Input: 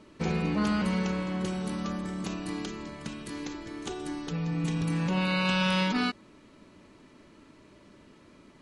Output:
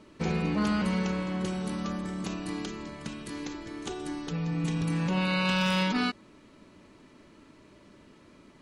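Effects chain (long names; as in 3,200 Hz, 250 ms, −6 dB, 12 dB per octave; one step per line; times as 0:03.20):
wave folding −17.5 dBFS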